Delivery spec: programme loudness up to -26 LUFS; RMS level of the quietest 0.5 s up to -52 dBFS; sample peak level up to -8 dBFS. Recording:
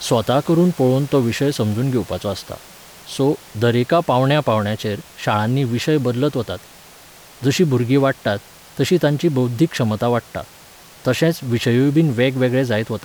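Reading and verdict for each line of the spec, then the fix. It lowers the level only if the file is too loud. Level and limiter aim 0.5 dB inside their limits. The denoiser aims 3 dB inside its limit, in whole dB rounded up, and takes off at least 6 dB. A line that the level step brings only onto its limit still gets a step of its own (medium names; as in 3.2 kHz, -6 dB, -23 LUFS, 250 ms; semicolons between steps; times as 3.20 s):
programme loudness -18.5 LUFS: fail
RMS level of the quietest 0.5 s -44 dBFS: fail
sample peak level -4.5 dBFS: fail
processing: noise reduction 6 dB, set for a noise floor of -44 dBFS; trim -8 dB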